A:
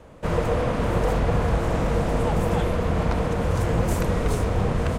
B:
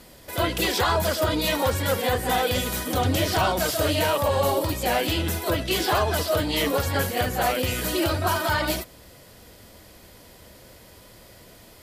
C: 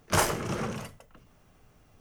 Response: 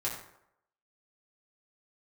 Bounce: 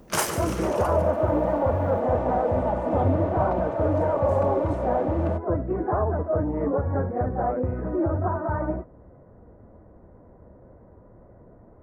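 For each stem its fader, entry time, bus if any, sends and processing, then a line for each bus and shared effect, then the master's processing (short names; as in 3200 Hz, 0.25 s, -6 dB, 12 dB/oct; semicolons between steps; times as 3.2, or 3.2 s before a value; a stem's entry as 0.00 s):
+2.5 dB, 0.40 s, no send, no echo send, band-pass 680 Hz, Q 3; comb 3.4 ms, depth 94%
+1.5 dB, 0.00 s, no send, no echo send, Gaussian blur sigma 8.3 samples; wow and flutter 18 cents
-1.0 dB, 0.00 s, no send, echo send -12 dB, HPF 160 Hz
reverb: off
echo: feedback echo 0.144 s, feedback 50%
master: high shelf 6700 Hz +5 dB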